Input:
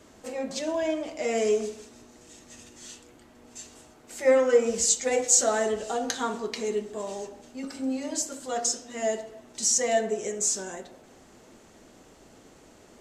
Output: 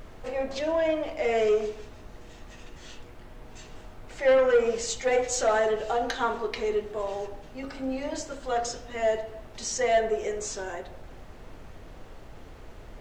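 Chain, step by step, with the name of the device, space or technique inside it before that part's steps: aircraft cabin announcement (BPF 380–3100 Hz; soft clip -19.5 dBFS, distortion -14 dB; brown noise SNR 15 dB); gain +4.5 dB

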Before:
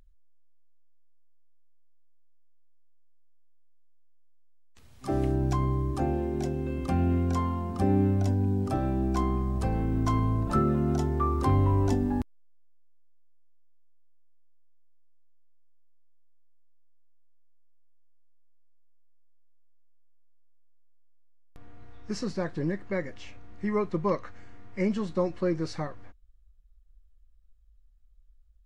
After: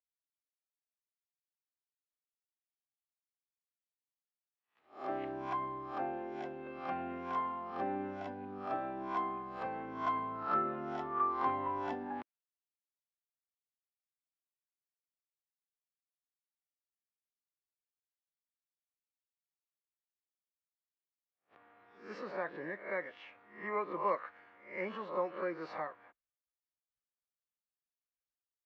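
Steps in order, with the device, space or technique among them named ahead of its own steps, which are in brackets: spectral swells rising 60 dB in 0.44 s; hearing-loss simulation (LPF 2400 Hz 12 dB/oct; expander -45 dBFS); HPF 260 Hz 12 dB/oct; three-band isolator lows -14 dB, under 590 Hz, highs -14 dB, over 4300 Hz; gain -1.5 dB

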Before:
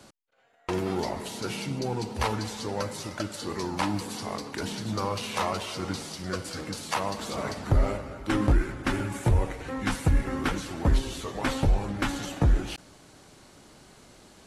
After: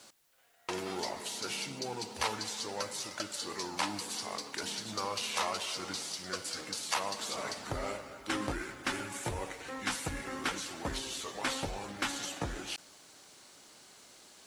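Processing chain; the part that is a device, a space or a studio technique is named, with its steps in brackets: Bessel low-pass 6200 Hz, order 2; turntable without a phono preamp (RIAA curve recording; white noise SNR 33 dB); gain -5 dB

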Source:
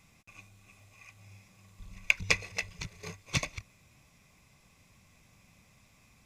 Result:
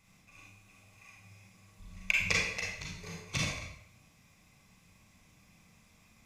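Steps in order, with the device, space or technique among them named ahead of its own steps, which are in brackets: bathroom (reverb RT60 0.70 s, pre-delay 33 ms, DRR -3.5 dB); gain -5.5 dB

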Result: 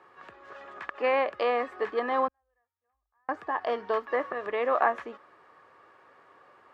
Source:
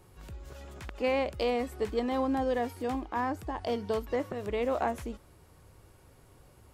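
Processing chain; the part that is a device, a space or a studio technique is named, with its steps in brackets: tin-can telephone (BPF 490–2400 Hz; small resonant body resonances 1200/1700 Hz, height 12 dB, ringing for 20 ms); 2.28–3.29 inverse Chebyshev band-stop 120–9200 Hz, stop band 50 dB; gain +5 dB

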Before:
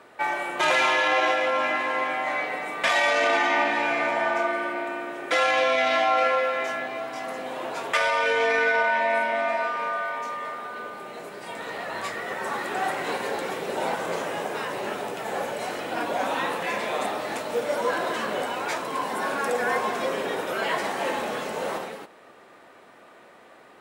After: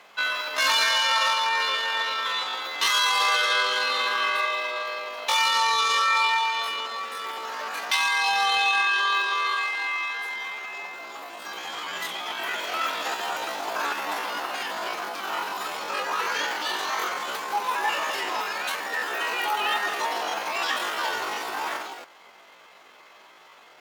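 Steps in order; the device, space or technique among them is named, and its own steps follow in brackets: chipmunk voice (pitch shift +9.5 st)

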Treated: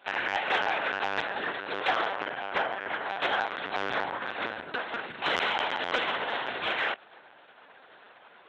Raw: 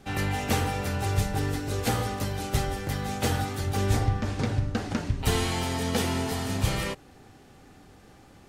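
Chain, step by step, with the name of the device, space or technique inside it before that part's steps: 2.15–3.11 bell 4400 Hz -12.5 dB 0.63 oct; talking toy (LPC vocoder at 8 kHz pitch kept; HPF 690 Hz 12 dB/oct; bell 1500 Hz +6 dB 0.26 oct; soft clip -20 dBFS, distortion -22 dB); gain +5.5 dB

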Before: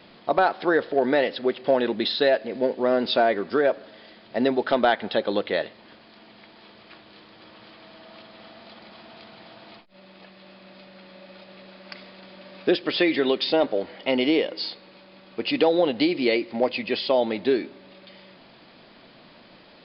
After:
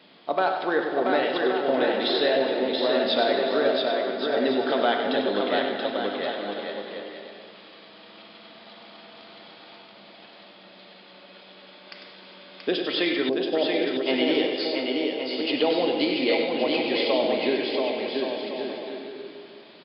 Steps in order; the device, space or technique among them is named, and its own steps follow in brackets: PA in a hall (HPF 170 Hz 12 dB/oct; bell 3300 Hz +4.5 dB 0.58 oct; echo 98 ms -8 dB; reverb RT60 2.5 s, pre-delay 3 ms, DRR 4 dB); 13.29–14.06 inverse Chebyshev low-pass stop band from 2100 Hz, stop band 50 dB; bouncing-ball echo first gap 0.68 s, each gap 0.65×, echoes 5; gain -4.5 dB

